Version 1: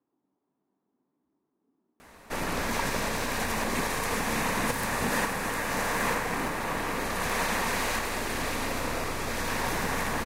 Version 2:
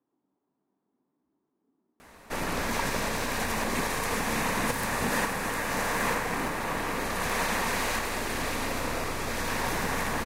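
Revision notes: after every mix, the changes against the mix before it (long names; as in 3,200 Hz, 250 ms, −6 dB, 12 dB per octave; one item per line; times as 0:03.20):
nothing changed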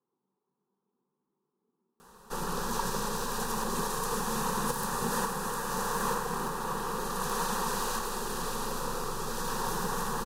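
master: add phaser with its sweep stopped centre 430 Hz, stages 8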